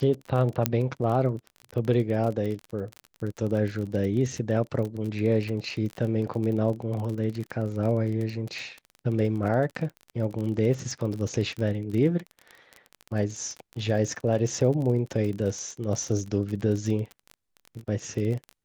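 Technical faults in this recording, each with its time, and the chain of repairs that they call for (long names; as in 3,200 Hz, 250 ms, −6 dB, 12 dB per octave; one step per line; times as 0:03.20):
surface crackle 29 per second −31 dBFS
0:00.66: click −5 dBFS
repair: click removal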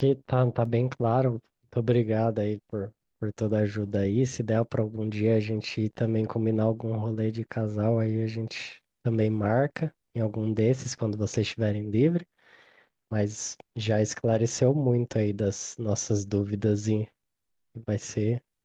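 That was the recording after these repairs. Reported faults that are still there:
0:00.66: click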